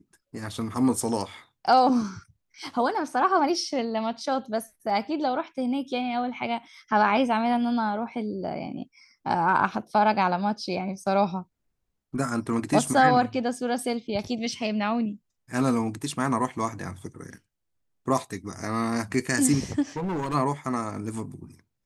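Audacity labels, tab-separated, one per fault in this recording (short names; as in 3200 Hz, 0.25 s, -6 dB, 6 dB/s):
19.970000	20.350000	clipped -26 dBFS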